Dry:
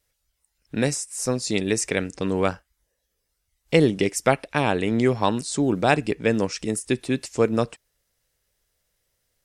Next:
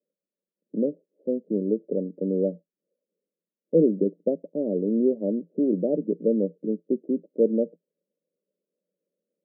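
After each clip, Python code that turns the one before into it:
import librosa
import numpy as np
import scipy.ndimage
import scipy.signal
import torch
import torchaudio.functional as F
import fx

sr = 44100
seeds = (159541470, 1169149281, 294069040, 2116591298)

y = scipy.signal.sosfilt(scipy.signal.cheby1(5, 1.0, [170.0, 590.0], 'bandpass', fs=sr, output='sos'), x)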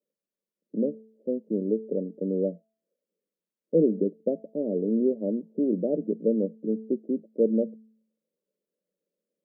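y = fx.comb_fb(x, sr, f0_hz=220.0, decay_s=0.63, harmonics='all', damping=0.0, mix_pct=50)
y = y * 10.0 ** (3.5 / 20.0)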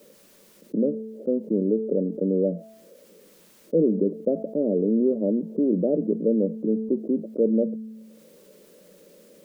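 y = fx.env_flatten(x, sr, amount_pct=50)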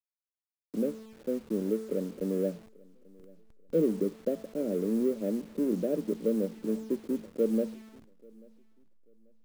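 y = fx.delta_hold(x, sr, step_db=-37.0)
y = fx.echo_feedback(y, sr, ms=838, feedback_pct=28, wet_db=-21)
y = fx.upward_expand(y, sr, threshold_db=-31.0, expansion=1.5)
y = y * 10.0 ** (-5.0 / 20.0)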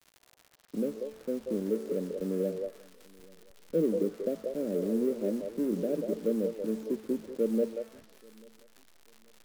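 y = fx.dmg_crackle(x, sr, seeds[0], per_s=130.0, level_db=-40.0)
y = fx.echo_stepped(y, sr, ms=186, hz=560.0, octaves=1.4, feedback_pct=70, wet_db=-2.5)
y = fx.vibrato(y, sr, rate_hz=0.81, depth_cents=21.0)
y = y * 10.0 ** (-1.5 / 20.0)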